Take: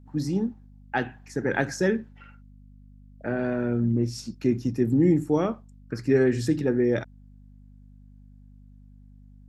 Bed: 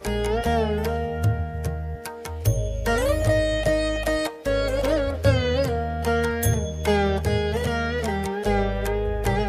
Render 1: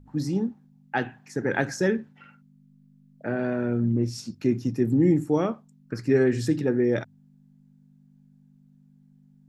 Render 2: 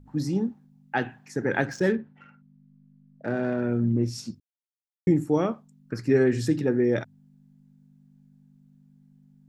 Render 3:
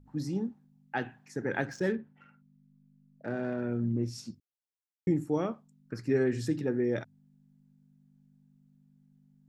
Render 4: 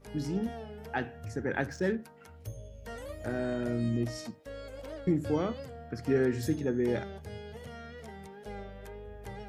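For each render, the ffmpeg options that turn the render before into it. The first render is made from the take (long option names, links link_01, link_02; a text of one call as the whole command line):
ffmpeg -i in.wav -af "bandreject=frequency=50:width_type=h:width=4,bandreject=frequency=100:width_type=h:width=4" out.wav
ffmpeg -i in.wav -filter_complex "[0:a]asettb=1/sr,asplit=3[link_01][link_02][link_03];[link_01]atrim=end=1.664[link_04];[link_02]atrim=start=1.66:end=3.62,asetpts=PTS-STARTPTS,afade=type=in:duration=0.004:curve=qsin,afade=type=out:start_time=1.956:duration=0.004:curve=qsin,adynamicsmooth=sensitivity=7.5:basefreq=2600[link_05];[link_03]atrim=start=3.616[link_06];[link_04][link_05]acrossfade=duration=0.004:curve1=hsin:curve2=qsin[link_07];[link_07][link_06]acrossfade=duration=0.004:curve1=qsin:curve2=hsin,asplit=3[link_08][link_09][link_10];[link_08]atrim=end=4.4,asetpts=PTS-STARTPTS,afade=type=out:start_time=4.396:duration=0.004:curve=hsin[link_11];[link_09]atrim=start=4.4:end=5.07,asetpts=PTS-STARTPTS,volume=0[link_12];[link_10]atrim=start=5.07,asetpts=PTS-STARTPTS,afade=type=in:duration=0.004:curve=hsin[link_13];[link_11][link_12][link_13]concat=n=3:v=0:a=1" out.wav
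ffmpeg -i in.wav -af "volume=-6.5dB" out.wav
ffmpeg -i in.wav -i bed.wav -filter_complex "[1:a]volume=-20.5dB[link_01];[0:a][link_01]amix=inputs=2:normalize=0" out.wav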